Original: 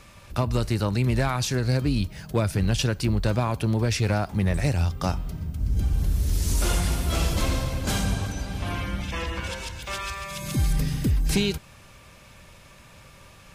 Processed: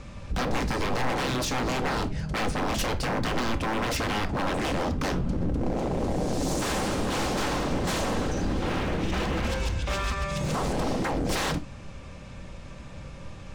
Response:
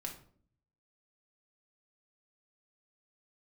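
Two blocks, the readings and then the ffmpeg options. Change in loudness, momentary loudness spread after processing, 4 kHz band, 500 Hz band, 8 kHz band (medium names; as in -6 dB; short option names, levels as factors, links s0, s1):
-2.0 dB, 16 LU, -0.5 dB, +1.5 dB, -2.5 dB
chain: -filter_complex "[0:a]lowpass=f=8300:w=0.5412,lowpass=f=8300:w=1.3066,tiltshelf=f=770:g=5.5,aeval=exprs='0.0422*(abs(mod(val(0)/0.0422+3,4)-2)-1)':c=same,asplit=2[s0][s1];[1:a]atrim=start_sample=2205,atrim=end_sample=3969[s2];[s1][s2]afir=irnorm=-1:irlink=0,volume=1.06[s3];[s0][s3]amix=inputs=2:normalize=0"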